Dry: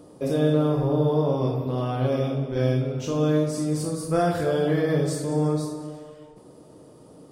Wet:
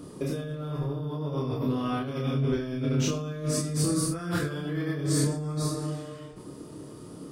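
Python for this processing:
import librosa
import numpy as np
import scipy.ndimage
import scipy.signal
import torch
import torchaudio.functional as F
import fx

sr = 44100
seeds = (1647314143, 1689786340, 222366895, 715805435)

y = fx.over_compress(x, sr, threshold_db=-29.0, ratio=-1.0)
y = fx.band_shelf(y, sr, hz=650.0, db=-8.5, octaves=1.1)
y = fx.doubler(y, sr, ms=28.0, db=-2.0)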